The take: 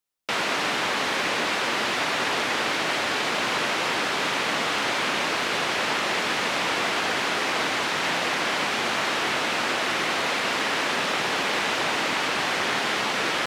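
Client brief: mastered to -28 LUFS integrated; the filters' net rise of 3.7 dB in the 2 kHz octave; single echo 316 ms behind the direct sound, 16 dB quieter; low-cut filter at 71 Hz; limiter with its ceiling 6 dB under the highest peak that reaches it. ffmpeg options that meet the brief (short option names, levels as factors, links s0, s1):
-af "highpass=71,equalizer=f=2000:t=o:g=4.5,alimiter=limit=0.168:level=0:latency=1,aecho=1:1:316:0.158,volume=0.562"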